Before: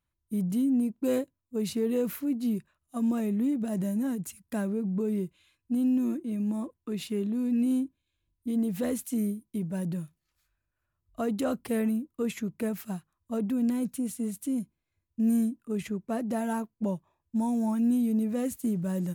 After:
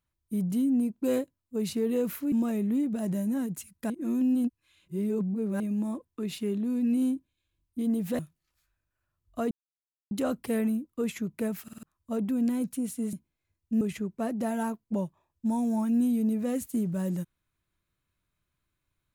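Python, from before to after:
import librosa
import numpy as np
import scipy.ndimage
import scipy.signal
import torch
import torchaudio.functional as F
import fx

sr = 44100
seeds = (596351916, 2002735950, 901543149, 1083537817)

y = fx.edit(x, sr, fx.cut(start_s=2.32, length_s=0.69),
    fx.reverse_span(start_s=4.59, length_s=1.7),
    fx.cut(start_s=8.88, length_s=1.12),
    fx.insert_silence(at_s=11.32, length_s=0.6),
    fx.stutter_over(start_s=12.84, slice_s=0.05, count=4),
    fx.cut(start_s=14.34, length_s=0.26),
    fx.cut(start_s=15.28, length_s=0.43), tone=tone)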